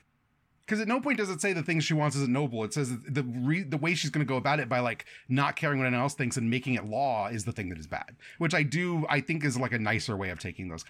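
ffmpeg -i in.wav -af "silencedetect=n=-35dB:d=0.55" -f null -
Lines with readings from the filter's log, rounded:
silence_start: 0.00
silence_end: 0.68 | silence_duration: 0.68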